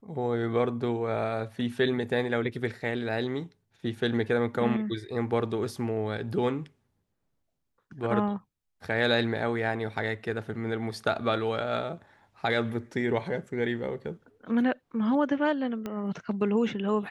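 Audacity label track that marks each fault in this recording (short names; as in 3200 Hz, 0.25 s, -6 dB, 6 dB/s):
15.860000	15.860000	pop -21 dBFS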